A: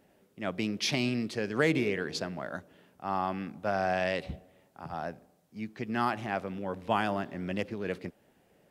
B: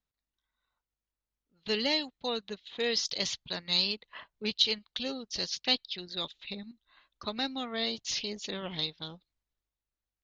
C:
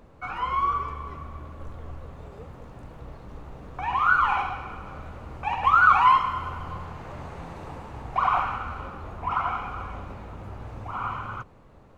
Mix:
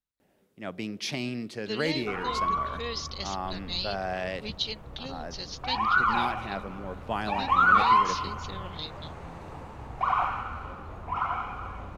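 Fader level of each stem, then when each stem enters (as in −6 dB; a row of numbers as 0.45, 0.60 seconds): −3.0, −5.0, −3.0 decibels; 0.20, 0.00, 1.85 seconds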